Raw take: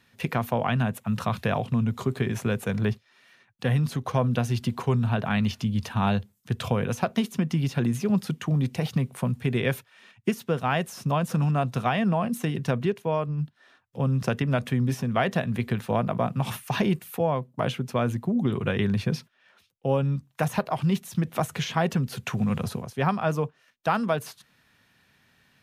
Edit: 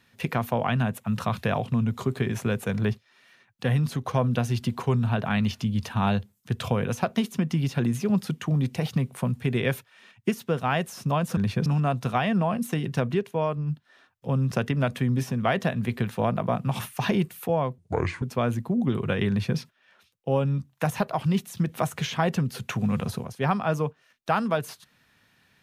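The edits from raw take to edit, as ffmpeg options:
-filter_complex "[0:a]asplit=5[s0][s1][s2][s3][s4];[s0]atrim=end=11.372[s5];[s1]atrim=start=18.868:end=19.162[s6];[s2]atrim=start=11.368:end=17.494[s7];[s3]atrim=start=17.49:end=17.8,asetpts=PTS-STARTPTS,asetrate=30870,aresample=44100[s8];[s4]atrim=start=17.796[s9];[s5][s6]acrossfade=d=0.004:c1=hsin:c2=hsin[s10];[s10][s7]acrossfade=d=0.004:c1=hsin:c2=hsin[s11];[s11][s8]acrossfade=d=0.004:c1=hsin:c2=hsin[s12];[s12][s9]acrossfade=d=0.004:c1=hsin:c2=hsin"

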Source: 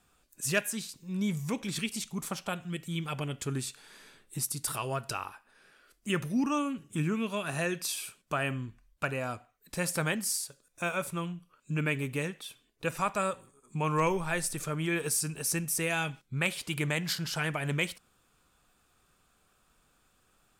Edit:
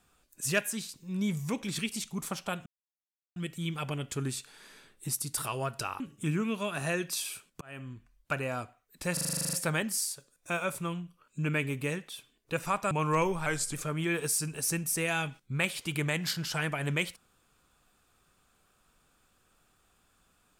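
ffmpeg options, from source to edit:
-filter_complex "[0:a]asplit=17[s0][s1][s2][s3][s4][s5][s6][s7][s8][s9][s10][s11][s12][s13][s14][s15][s16];[s0]atrim=end=2.66,asetpts=PTS-STARTPTS,afade=t=out:st=2.656:d=0.004:c=hsin,apad=pad_dur=0.7[s17];[s1]atrim=start=2.66:end=5.302,asetpts=PTS-STARTPTS,afade=t=in:d=0.004:c=hsin[s18];[s2]atrim=start=6.718:end=8.33,asetpts=PTS-STARTPTS,afade=t=out:st=1.608:d=0.004:c=hsin[s19];[s3]atrim=start=8.33:end=9.892,asetpts=PTS-STARTPTS,afade=t=in:d=0.83:c=qsin[s20];[s4]atrim=start=9.848:end=9.892[s21];[s5]atrim=start=9.848:end=9.892[s22];[s6]atrim=start=9.848:end=9.892[s23];[s7]atrim=start=9.848:end=9.892[s24];[s8]atrim=start=9.848:end=9.892[s25];[s9]atrim=start=9.848:end=9.892[s26];[s10]atrim=start=9.848:end=9.892[s27];[s11]atrim=start=9.848:end=9.892[s28];[s12]atrim=start=9.848:end=9.892[s29];[s13]atrim=start=9.848:end=13.232[s30];[s14]atrim=start=13.758:end=14.314[s31];[s15]atrim=start=14.31:end=14.56,asetpts=PTS-STARTPTS,asetrate=39249,aresample=44100[s32];[s16]atrim=start=14.556[s33];[s17][s18]concat=n=2:v=0:a=1[s34];[s19][s20]concat=n=2:v=0:a=1[s35];[s34][s35]acrossfade=d=0.004:c1=hsin:c2=hsin[s36];[s36][s21]acrossfade=d=0.004:c1=hsin:c2=hsin[s37];[s37][s22]acrossfade=d=0.004:c1=hsin:c2=hsin[s38];[s38][s23]acrossfade=d=0.004:c1=hsin:c2=hsin[s39];[s39][s24]acrossfade=d=0.004:c1=hsin:c2=hsin[s40];[s40][s25]acrossfade=d=0.004:c1=hsin:c2=hsin[s41];[s41][s26]acrossfade=d=0.004:c1=hsin:c2=hsin[s42];[s42][s27]acrossfade=d=0.004:c1=hsin:c2=hsin[s43];[s43][s28]acrossfade=d=0.004:c1=hsin:c2=hsin[s44];[s44][s29]acrossfade=d=0.004:c1=hsin:c2=hsin[s45];[s45][s30]acrossfade=d=0.004:c1=hsin:c2=hsin[s46];[s46][s31]acrossfade=d=0.004:c1=hsin:c2=hsin[s47];[s47][s32]acrossfade=d=0.004:c1=hsin:c2=hsin[s48];[s48][s33]acrossfade=d=0.004:c1=hsin:c2=hsin"

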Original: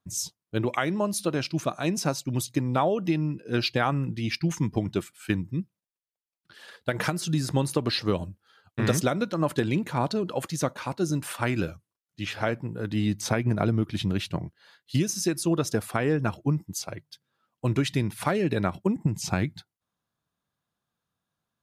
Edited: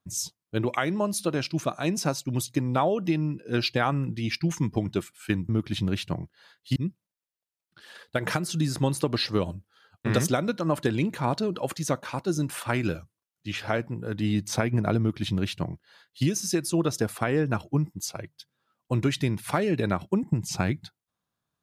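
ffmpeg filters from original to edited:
-filter_complex "[0:a]asplit=3[s0][s1][s2];[s0]atrim=end=5.492[s3];[s1]atrim=start=13.718:end=14.992[s4];[s2]atrim=start=5.488[s5];[s3][s4]acrossfade=d=0.004:c1=hsin:c2=hsin[s6];[s6][s5]acrossfade=d=0.004:c1=hsin:c2=hsin"

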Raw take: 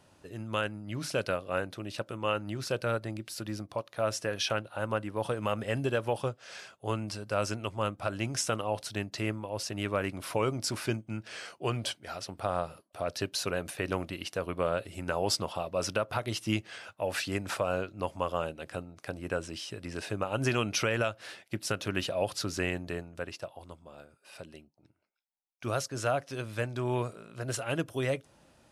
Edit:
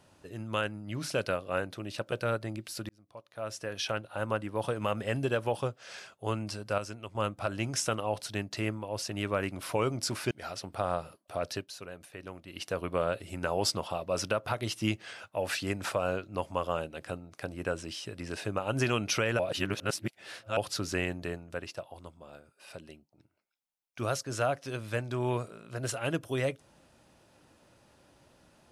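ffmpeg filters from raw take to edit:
-filter_complex "[0:a]asplit=10[s0][s1][s2][s3][s4][s5][s6][s7][s8][s9];[s0]atrim=end=2.122[s10];[s1]atrim=start=2.728:end=3.5,asetpts=PTS-STARTPTS,afade=t=out:st=0.768:d=0.004:c=hsin[s11];[s2]atrim=start=3.5:end=7.392,asetpts=PTS-STARTPTS,afade=t=in:d=1.32[s12];[s3]atrim=start=7.388:end=7.762,asetpts=PTS-STARTPTS,volume=0.422[s13];[s4]atrim=start=7.758:end=10.922[s14];[s5]atrim=start=11.958:end=13.33,asetpts=PTS-STARTPTS,afade=t=out:st=1.192:d=0.18:silence=0.251189[s15];[s6]atrim=start=13.33:end=14.11,asetpts=PTS-STARTPTS,volume=0.251[s16];[s7]atrim=start=14.11:end=21.042,asetpts=PTS-STARTPTS,afade=t=in:d=0.18:silence=0.251189[s17];[s8]atrim=start=21.038:end=22.222,asetpts=PTS-STARTPTS,areverse[s18];[s9]atrim=start=22.218[s19];[s11][s12]concat=n=2:v=0:a=1[s20];[s10][s20]acrossfade=d=0.004:c1=hsin:c2=hsin[s21];[s21][s13]acrossfade=d=0.004:c1=hsin:c2=hsin[s22];[s22][s14]acrossfade=d=0.004:c1=hsin:c2=hsin[s23];[s15][s16][s17]concat=n=3:v=0:a=1[s24];[s23][s24]acrossfade=d=0.004:c1=hsin:c2=hsin[s25];[s25][s18]acrossfade=d=0.004:c1=hsin:c2=hsin[s26];[s26][s19]acrossfade=d=0.004:c1=hsin:c2=hsin"

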